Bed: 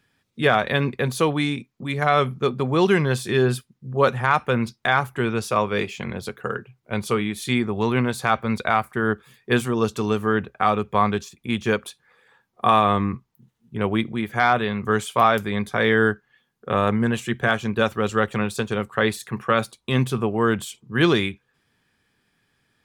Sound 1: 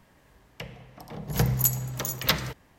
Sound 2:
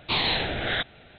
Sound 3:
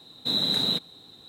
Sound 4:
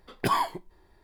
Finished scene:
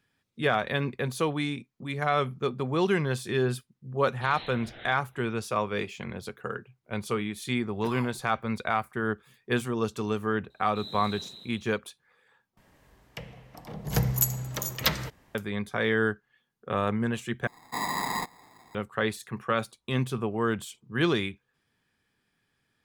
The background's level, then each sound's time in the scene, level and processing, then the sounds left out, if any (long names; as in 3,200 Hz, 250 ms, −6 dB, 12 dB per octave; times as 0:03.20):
bed −7 dB
0:04.12: mix in 2 −18 dB
0:07.60: mix in 4 −16 dB
0:10.50: mix in 3 −17.5 dB + echo machine with several playback heads 80 ms, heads first and second, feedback 51%, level −9 dB
0:12.57: overwrite with 1 −1.5 dB
0:17.47: overwrite with 3 −5.5 dB + decimation without filtering 15×